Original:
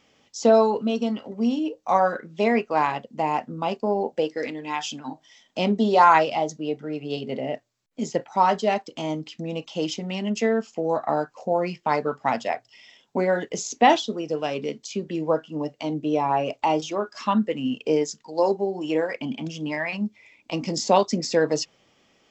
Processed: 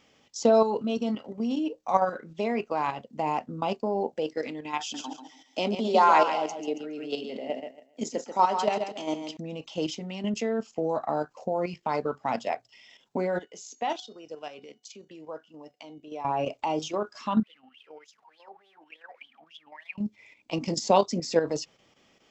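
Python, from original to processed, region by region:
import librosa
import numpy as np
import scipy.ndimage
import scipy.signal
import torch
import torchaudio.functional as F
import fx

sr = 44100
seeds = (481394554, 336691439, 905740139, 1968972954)

y = fx.chain(x, sr, fx.highpass(hz=220.0, slope=24),
    fx.high_shelf(hz=5000.0, db=4.0),
    fx.echo_feedback(ms=139, feedback_pct=28, wet_db=-7.5), at=(4.8, 9.37))
y = fx.chain(y, sr, fx.highpass(hz=500.0, slope=6),
    fx.comb_fb(f0_hz=740.0, decay_s=0.41, harmonics='all', damping=0.0, mix_pct=60), at=(13.39, 16.25))
y = fx.chain(y, sr, fx.zero_step(step_db=-34.0),
    fx.wah_lfo(hz=3.4, low_hz=710.0, high_hz=3500.0, q=14.0), at=(17.43, 19.98))
y = fx.dynamic_eq(y, sr, hz=1800.0, q=3.1, threshold_db=-44.0, ratio=4.0, max_db=-5)
y = fx.level_steps(y, sr, step_db=9)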